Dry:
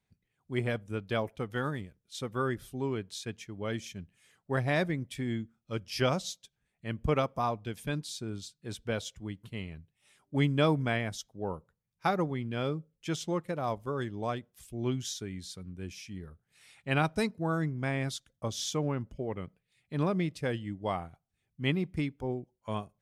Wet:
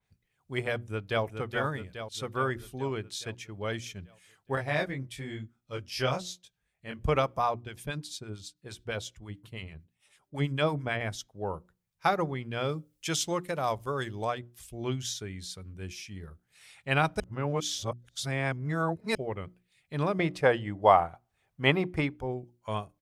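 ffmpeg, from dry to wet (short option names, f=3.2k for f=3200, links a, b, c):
-filter_complex "[0:a]asplit=2[a][b];[b]afade=t=in:st=0.74:d=0.01,afade=t=out:st=1.24:d=0.01,aecho=0:1:420|840|1260|1680|2100|2520|2940|3360:0.473151|0.283891|0.170334|0.102201|0.0613204|0.0367922|0.0220753|0.0132452[c];[a][c]amix=inputs=2:normalize=0,asettb=1/sr,asplit=3[d][e][f];[d]atrim=end=4.554[g];[e]atrim=start=4.55:end=7.01,asetpts=PTS-STARTPTS,afade=t=in:d=0.004:c=qsin,afade=t=out:st=2.456:d=0.004:c=qsin,flanger=delay=18.5:depth=4.1:speed=1[h];[f]atrim=start=7.006[i];[g][h]acrossfade=d=0.004:c1=hsin:c2=qsin[j];[j][i]acrossfade=d=0.004:c1=qsin:c2=hsin,asettb=1/sr,asplit=3[k][l][m];[k]atrim=end=7.544[n];[l]atrim=start=7.54:end=11.01,asetpts=PTS-STARTPTS,afade=t=in:d=0.004:c=qsin,afade=t=out:st=3.466:d=0.004:c=qsin,acrossover=split=1000[o][p];[o]aeval=exprs='val(0)*(1-0.7/2+0.7/2*cos(2*PI*9*n/s))':c=same[q];[p]aeval=exprs='val(0)*(1-0.7/2-0.7/2*cos(2*PI*9*n/s))':c=same[r];[q][r]amix=inputs=2:normalize=0[s];[m]atrim=start=11.006[t];[n][s]acrossfade=d=0.004:c1=hsin:c2=qsin[u];[u][t]acrossfade=d=0.004:c1=qsin:c2=hsin,asettb=1/sr,asplit=3[v][w][x];[v]atrim=end=12.694[y];[w]atrim=start=12.69:end=14.25,asetpts=PTS-STARTPTS,afade=t=in:d=0.004:c=qsin,afade=t=out:st=1.556:d=0.004:c=qsin,highshelf=f=3.5k:g=10.5[z];[x]atrim=start=14.246[aa];[y][z]acrossfade=d=0.004:c1=hsin:c2=qsin[ab];[ab][aa]acrossfade=d=0.004:c1=qsin:c2=hsin,asettb=1/sr,asplit=3[ac][ad][ae];[ac]atrim=end=20.194[af];[ad]atrim=start=20.19:end=22.17,asetpts=PTS-STARTPTS,afade=t=in:d=0.004:c=qsin,afade=t=out:st=1.976:d=0.004:c=qsin,equalizer=f=820:t=o:w=2.4:g=12[ag];[ae]atrim=start=22.166[ah];[af][ag]acrossfade=d=0.004:c1=hsin:c2=qsin[ai];[ai][ah]acrossfade=d=0.004:c1=qsin:c2=hsin,asplit=3[aj][ak][al];[aj]atrim=end=17.202[am];[ak]atrim=start=17.198:end=19.152,asetpts=PTS-STARTPTS,areverse[an];[al]atrim=start=19.148[ao];[am][an]acrossfade=d=0.004:c1=hsin:c2=hsin[ap];[ap][ao]acrossfade=d=0.004:c1=hsin:c2=hsin,equalizer=f=240:t=o:w=1.4:g=-7,bandreject=f=60:t=h:w=6,bandreject=f=120:t=h:w=6,bandreject=f=180:t=h:w=6,bandreject=f=240:t=h:w=6,bandreject=f=300:t=h:w=6,bandreject=f=360:t=h:w=6,adynamicequalizer=threshold=0.00282:dfrequency=3300:dqfactor=0.7:tfrequency=3300:tqfactor=0.7:attack=5:release=100:ratio=0.375:range=2.5:mode=cutabove:tftype=highshelf,volume=4dB"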